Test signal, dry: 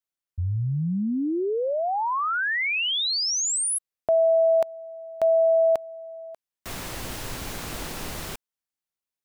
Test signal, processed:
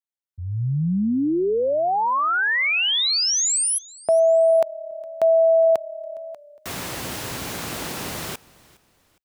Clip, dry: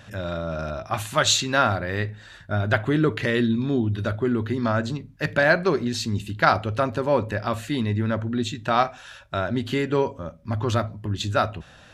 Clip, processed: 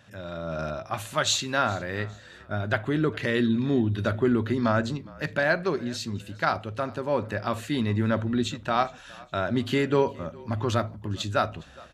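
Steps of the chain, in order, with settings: high-pass 94 Hz; level rider gain up to 13 dB; on a send: frequency-shifting echo 411 ms, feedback 36%, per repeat -35 Hz, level -23 dB; on the sum: trim -8.5 dB

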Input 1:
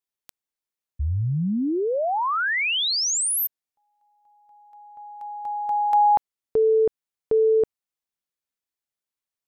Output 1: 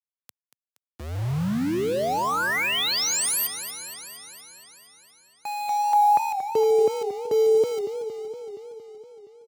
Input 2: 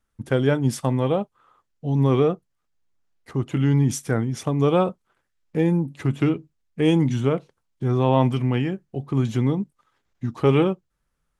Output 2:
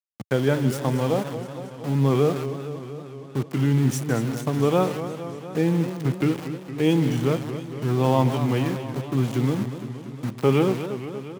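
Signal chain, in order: echo from a far wall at 26 m, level -14 dB; small samples zeroed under -29 dBFS; high-pass 100 Hz 24 dB/octave; modulated delay 233 ms, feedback 70%, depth 162 cents, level -11 dB; trim -1.5 dB

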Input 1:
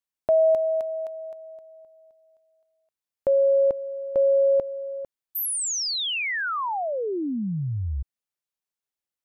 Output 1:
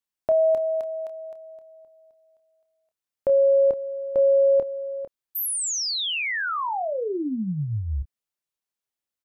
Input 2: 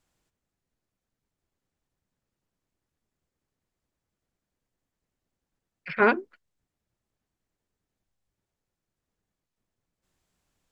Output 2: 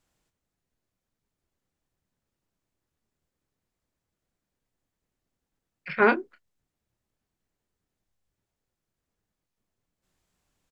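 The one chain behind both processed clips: doubling 27 ms -10.5 dB

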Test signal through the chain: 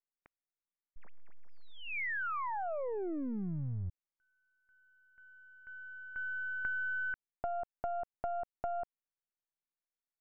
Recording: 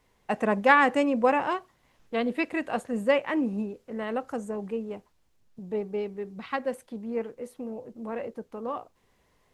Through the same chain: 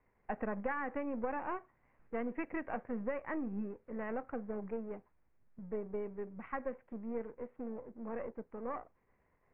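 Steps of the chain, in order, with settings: partial rectifier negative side -7 dB; steep low-pass 2.3 kHz 48 dB/octave; compression 16:1, threshold -29 dBFS; trim -4 dB

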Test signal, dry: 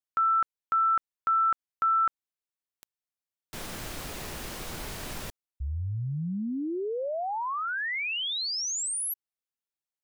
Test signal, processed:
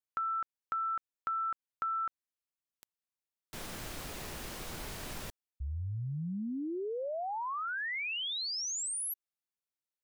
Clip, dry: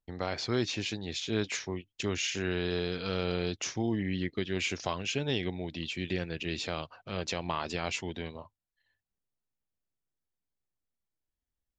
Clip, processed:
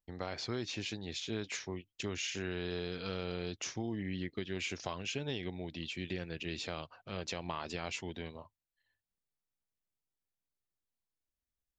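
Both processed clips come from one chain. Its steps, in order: compression, threshold -28 dBFS; trim -4.5 dB

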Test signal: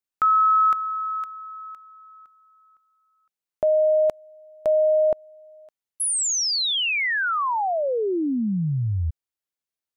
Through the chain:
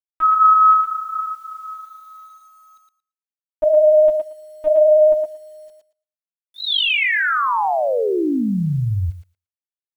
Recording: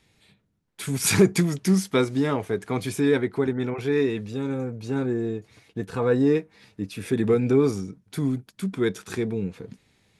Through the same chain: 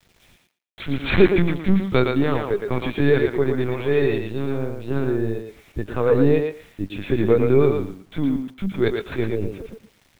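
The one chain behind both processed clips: LPC vocoder at 8 kHz pitch kept; word length cut 10-bit, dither none; thinning echo 114 ms, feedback 16%, high-pass 310 Hz, level -4 dB; trim +3.5 dB

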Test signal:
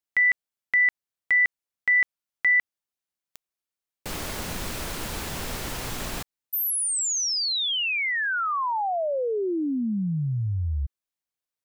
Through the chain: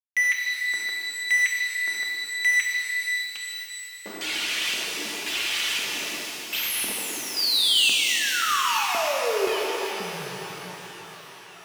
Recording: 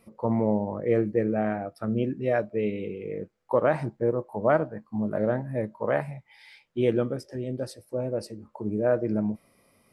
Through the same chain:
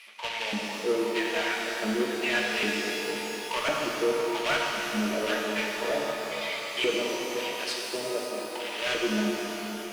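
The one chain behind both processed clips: reverb removal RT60 1 s; RIAA curve recording; reverb removal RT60 1.1 s; in parallel at -2.5 dB: compression 8:1, threshold -31 dBFS; on the sum: comb of notches 260 Hz; companded quantiser 4-bit; LFO band-pass square 0.95 Hz 270–2700 Hz; overdrive pedal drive 26 dB, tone 4.4 kHz, clips at -11.5 dBFS; feedback echo behind a band-pass 523 ms, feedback 83%, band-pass 1.3 kHz, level -20 dB; pitch-shifted reverb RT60 3.7 s, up +12 st, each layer -8 dB, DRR -2 dB; trim -5 dB

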